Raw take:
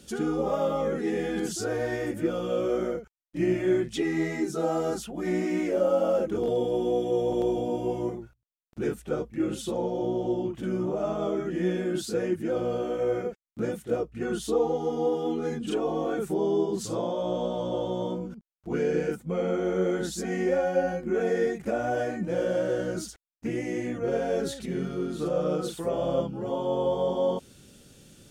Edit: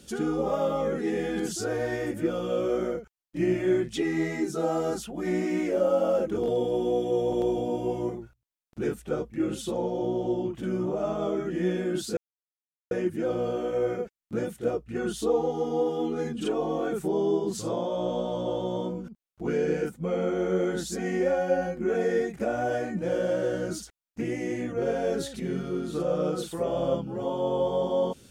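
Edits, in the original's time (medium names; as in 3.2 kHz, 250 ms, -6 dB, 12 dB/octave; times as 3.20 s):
12.17 s: insert silence 0.74 s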